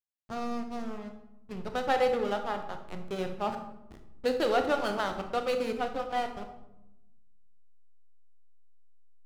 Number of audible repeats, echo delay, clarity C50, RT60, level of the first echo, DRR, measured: none, none, 8.5 dB, 0.95 s, none, 6.0 dB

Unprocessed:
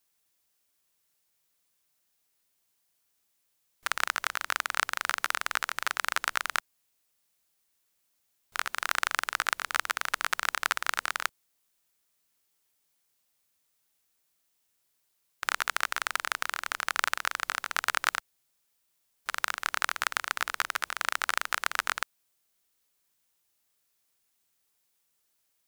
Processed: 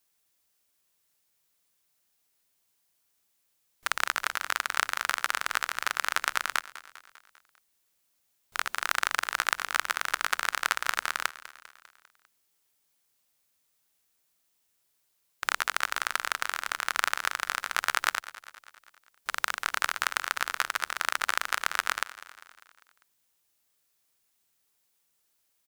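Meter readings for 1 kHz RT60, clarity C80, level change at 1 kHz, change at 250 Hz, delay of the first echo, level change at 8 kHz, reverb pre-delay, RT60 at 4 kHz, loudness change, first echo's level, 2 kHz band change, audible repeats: none, none, +1.0 dB, +1.0 dB, 0.199 s, +1.0 dB, none, none, +1.0 dB, -17.0 dB, +1.0 dB, 4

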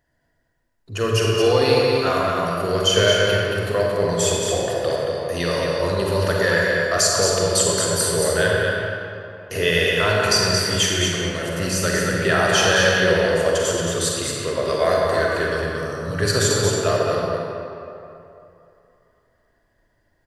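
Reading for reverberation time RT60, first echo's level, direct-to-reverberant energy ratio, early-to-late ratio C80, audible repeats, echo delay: 2.8 s, -4.5 dB, -4.0 dB, -2.0 dB, 1, 0.225 s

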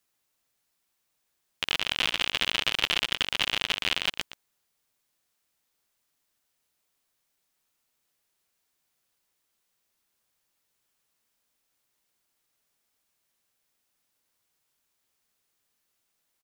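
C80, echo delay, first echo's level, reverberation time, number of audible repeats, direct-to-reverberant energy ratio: none, 0.12 s, -13.0 dB, none, 1, none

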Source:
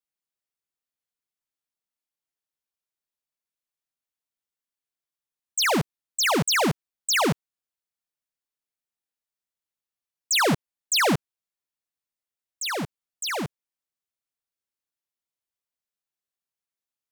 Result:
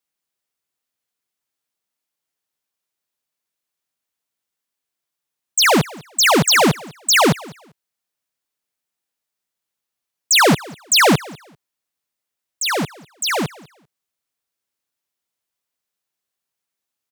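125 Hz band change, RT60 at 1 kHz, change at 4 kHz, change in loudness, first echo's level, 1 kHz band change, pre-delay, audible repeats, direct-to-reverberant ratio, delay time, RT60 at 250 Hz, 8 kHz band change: +7.5 dB, none, +8.5 dB, +8.5 dB, -22.0 dB, +8.5 dB, none, 1, none, 0.197 s, none, +8.5 dB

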